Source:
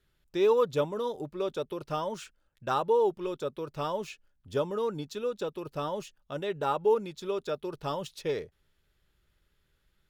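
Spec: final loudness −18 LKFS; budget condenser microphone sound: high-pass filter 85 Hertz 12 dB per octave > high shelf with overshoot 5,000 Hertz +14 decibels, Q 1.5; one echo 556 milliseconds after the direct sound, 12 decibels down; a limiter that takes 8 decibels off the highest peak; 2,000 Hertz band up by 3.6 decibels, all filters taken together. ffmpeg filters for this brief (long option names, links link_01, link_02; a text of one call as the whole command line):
ffmpeg -i in.wav -af "equalizer=frequency=2000:width_type=o:gain=7.5,alimiter=limit=-21.5dB:level=0:latency=1,highpass=85,highshelf=frequency=5000:width_type=q:width=1.5:gain=14,aecho=1:1:556:0.251,volume=15dB" out.wav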